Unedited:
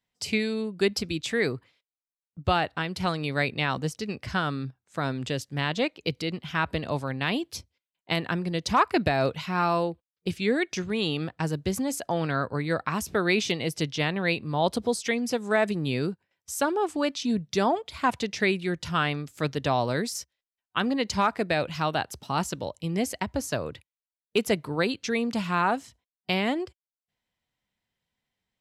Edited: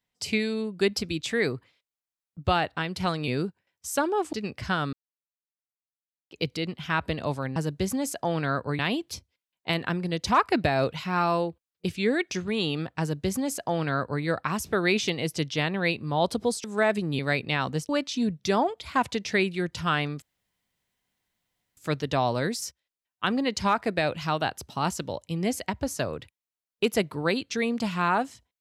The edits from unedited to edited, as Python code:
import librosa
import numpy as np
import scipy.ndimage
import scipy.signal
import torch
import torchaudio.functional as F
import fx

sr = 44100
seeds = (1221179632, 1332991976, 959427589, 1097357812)

y = fx.edit(x, sr, fx.swap(start_s=3.28, length_s=0.7, other_s=15.92, other_length_s=1.05),
    fx.silence(start_s=4.58, length_s=1.38),
    fx.duplicate(start_s=11.42, length_s=1.23, to_s=7.21),
    fx.cut(start_s=15.06, length_s=0.31),
    fx.insert_room_tone(at_s=19.3, length_s=1.55), tone=tone)